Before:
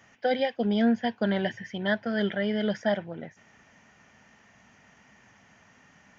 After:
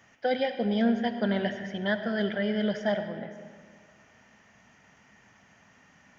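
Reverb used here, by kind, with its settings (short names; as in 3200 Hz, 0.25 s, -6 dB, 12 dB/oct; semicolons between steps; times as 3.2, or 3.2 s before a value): digital reverb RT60 1.9 s, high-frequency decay 0.65×, pre-delay 30 ms, DRR 8.5 dB; gain -1.5 dB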